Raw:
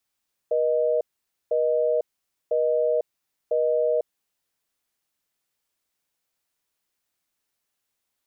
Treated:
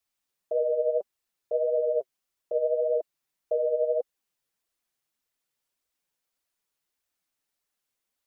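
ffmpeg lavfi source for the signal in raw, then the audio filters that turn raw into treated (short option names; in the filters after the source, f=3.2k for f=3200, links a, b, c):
-f lavfi -i "aevalsrc='0.0794*(sin(2*PI*480*t)+sin(2*PI*620*t))*clip(min(mod(t,1),0.5-mod(t,1))/0.005,0,1)':d=3.79:s=44100"
-af "flanger=delay=1.4:depth=6.9:regen=28:speed=1.7:shape=triangular"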